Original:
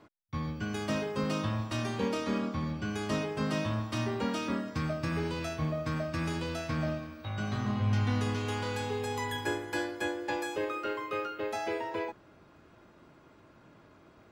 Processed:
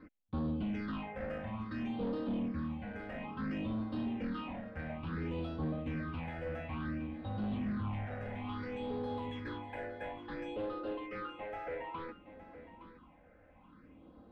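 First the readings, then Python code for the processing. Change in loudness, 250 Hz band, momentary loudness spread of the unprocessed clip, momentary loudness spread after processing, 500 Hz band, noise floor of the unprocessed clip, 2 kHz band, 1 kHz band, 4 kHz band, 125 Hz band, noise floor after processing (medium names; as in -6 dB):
-6.0 dB, -3.5 dB, 4 LU, 8 LU, -7.5 dB, -59 dBFS, -9.0 dB, -7.5 dB, -13.0 dB, -8.0 dB, -61 dBFS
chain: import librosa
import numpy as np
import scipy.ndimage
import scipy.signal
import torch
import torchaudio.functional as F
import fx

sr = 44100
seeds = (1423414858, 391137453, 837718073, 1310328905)

y = x + 0.82 * np.pad(x, (int(3.9 * sr / 1000.0), 0))[:len(x)]
y = fx.rider(y, sr, range_db=10, speed_s=2.0)
y = np.clip(10.0 ** (31.5 / 20.0) * y, -1.0, 1.0) / 10.0 ** (31.5 / 20.0)
y = fx.phaser_stages(y, sr, stages=6, low_hz=270.0, high_hz=2100.0, hz=0.58, feedback_pct=30)
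y = fx.air_absorb(y, sr, metres=440.0)
y = y + 10.0 ** (-13.5 / 20.0) * np.pad(y, (int(865 * sr / 1000.0), 0))[:len(y)]
y = F.gain(torch.from_numpy(y), -1.0).numpy()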